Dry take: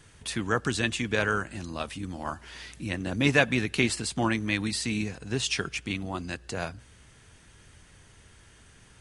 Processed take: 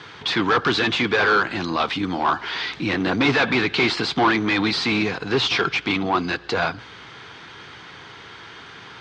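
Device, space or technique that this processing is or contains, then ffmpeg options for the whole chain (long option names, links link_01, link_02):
overdrive pedal into a guitar cabinet: -filter_complex "[0:a]asplit=2[link_01][link_02];[link_02]highpass=frequency=720:poles=1,volume=32dB,asoftclip=type=tanh:threshold=-4dB[link_03];[link_01][link_03]amix=inputs=2:normalize=0,lowpass=frequency=4300:poles=1,volume=-6dB,highpass=81,equalizer=frequency=81:width_type=q:width=4:gain=-5,equalizer=frequency=220:width_type=q:width=4:gain=-5,equalizer=frequency=590:width_type=q:width=4:gain=-9,equalizer=frequency=1800:width_type=q:width=4:gain=-6,equalizer=frequency=2700:width_type=q:width=4:gain=-7,lowpass=frequency=4200:width=0.5412,lowpass=frequency=4200:width=1.3066,volume=-2dB"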